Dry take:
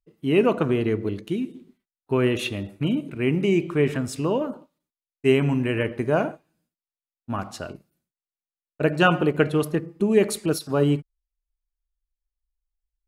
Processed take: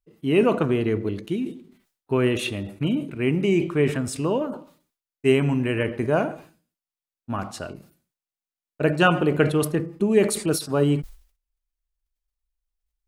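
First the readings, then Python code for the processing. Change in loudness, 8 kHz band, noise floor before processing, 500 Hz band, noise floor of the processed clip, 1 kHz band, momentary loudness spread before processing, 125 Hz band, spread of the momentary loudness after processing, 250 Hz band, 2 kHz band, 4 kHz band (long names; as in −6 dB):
+0.5 dB, +4.0 dB, below −85 dBFS, +0.5 dB, below −85 dBFS, +0.5 dB, 11 LU, +0.5 dB, 12 LU, +0.5 dB, 0.0 dB, +0.5 dB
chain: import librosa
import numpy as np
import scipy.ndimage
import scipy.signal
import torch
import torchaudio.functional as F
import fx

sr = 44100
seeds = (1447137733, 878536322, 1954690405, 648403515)

y = fx.dynamic_eq(x, sr, hz=8700.0, q=4.1, threshold_db=-57.0, ratio=4.0, max_db=6)
y = fx.sustainer(y, sr, db_per_s=130.0)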